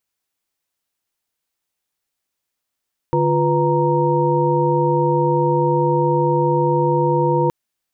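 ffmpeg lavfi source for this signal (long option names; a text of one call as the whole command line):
ffmpeg -f lavfi -i "aevalsrc='0.106*(sin(2*PI*146.83*t)+sin(2*PI*349.23*t)+sin(2*PI*493.88*t)+sin(2*PI*932.33*t))':duration=4.37:sample_rate=44100" out.wav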